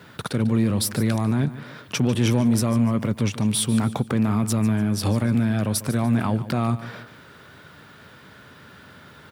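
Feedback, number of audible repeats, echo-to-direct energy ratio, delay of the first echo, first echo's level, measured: 37%, 3, −14.5 dB, 146 ms, −15.0 dB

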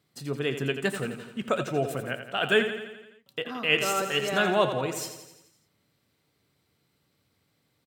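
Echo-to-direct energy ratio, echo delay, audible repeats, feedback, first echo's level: −7.5 dB, 85 ms, 6, 59%, −9.5 dB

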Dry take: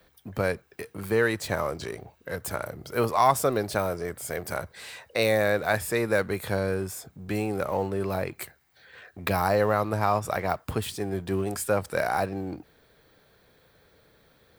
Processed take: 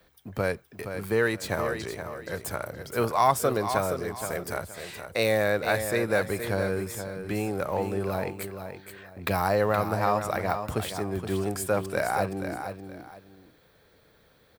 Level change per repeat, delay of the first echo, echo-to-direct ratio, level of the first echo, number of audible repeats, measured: −11.5 dB, 471 ms, −8.0 dB, −8.5 dB, 2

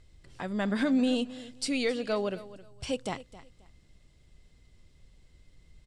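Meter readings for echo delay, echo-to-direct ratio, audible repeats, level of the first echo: 266 ms, −17.0 dB, 2, −17.0 dB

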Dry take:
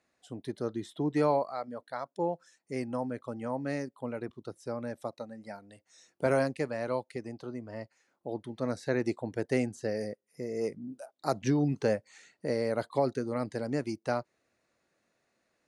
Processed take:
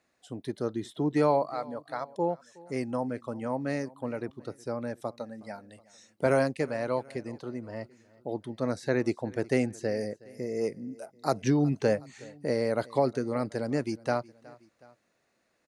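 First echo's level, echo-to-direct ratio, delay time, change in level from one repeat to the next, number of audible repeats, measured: −22.5 dB, −21.5 dB, 368 ms, −5.0 dB, 2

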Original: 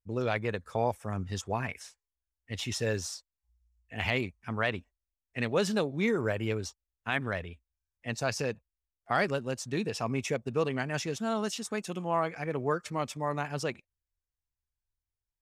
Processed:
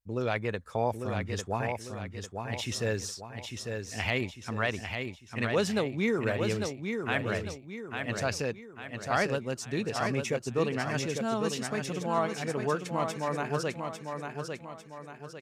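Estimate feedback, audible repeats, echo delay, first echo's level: 43%, 5, 849 ms, −5.5 dB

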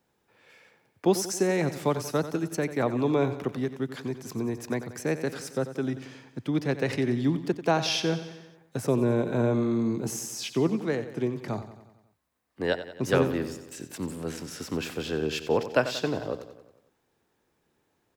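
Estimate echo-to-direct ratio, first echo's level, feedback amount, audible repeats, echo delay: −11.0 dB, −12.5 dB, 57%, 5, 91 ms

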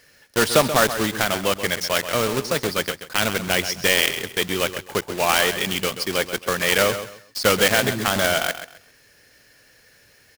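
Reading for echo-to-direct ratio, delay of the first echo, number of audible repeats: −10.5 dB, 132 ms, 2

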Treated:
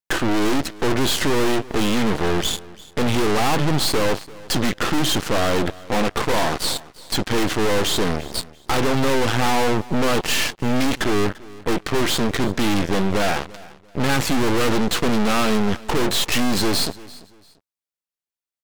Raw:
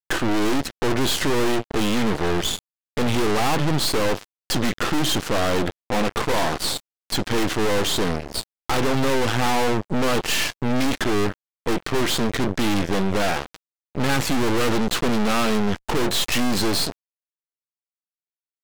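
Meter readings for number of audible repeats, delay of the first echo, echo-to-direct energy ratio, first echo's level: 2, 342 ms, −20.0 dB, −20.5 dB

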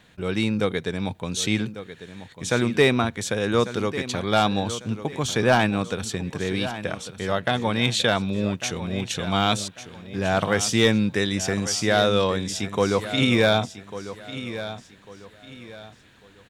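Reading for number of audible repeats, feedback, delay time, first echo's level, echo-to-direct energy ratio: 3, 32%, 1,147 ms, −13.0 dB, −12.5 dB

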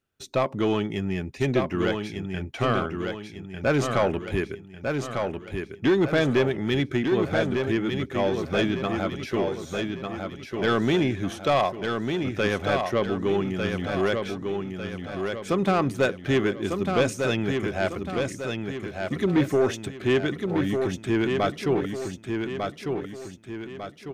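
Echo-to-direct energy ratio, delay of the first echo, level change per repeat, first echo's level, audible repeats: −4.0 dB, 1,199 ms, −7.0 dB, −5.0 dB, 5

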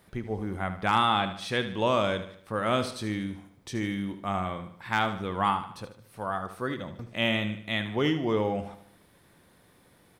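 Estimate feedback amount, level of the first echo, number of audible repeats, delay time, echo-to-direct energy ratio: 45%, −11.5 dB, 4, 75 ms, −10.5 dB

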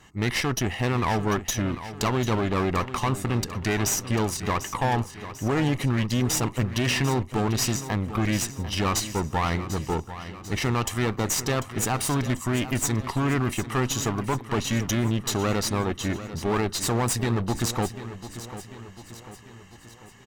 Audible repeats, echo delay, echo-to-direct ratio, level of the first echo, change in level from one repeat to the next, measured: 4, 744 ms, −11.5 dB, −13.0 dB, −5.5 dB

